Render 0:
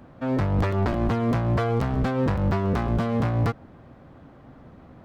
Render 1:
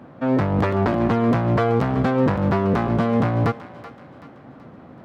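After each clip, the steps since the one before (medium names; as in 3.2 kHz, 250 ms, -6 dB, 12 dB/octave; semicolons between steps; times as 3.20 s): high-pass 130 Hz 12 dB/octave; treble shelf 4.3 kHz -9.5 dB; thinning echo 380 ms, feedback 49%, high-pass 850 Hz, level -12.5 dB; trim +6 dB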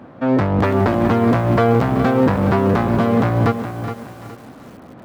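peaking EQ 150 Hz -5 dB 0.25 oct; bit-crushed delay 417 ms, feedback 35%, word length 7-bit, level -9.5 dB; trim +3.5 dB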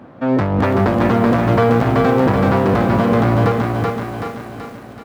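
feedback delay 380 ms, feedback 47%, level -4.5 dB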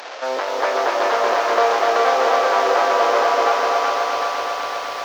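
one-bit delta coder 32 kbps, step -24.5 dBFS; inverse Chebyshev high-pass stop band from 190 Hz, stop band 50 dB; bit-crushed delay 251 ms, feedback 80%, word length 8-bit, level -4 dB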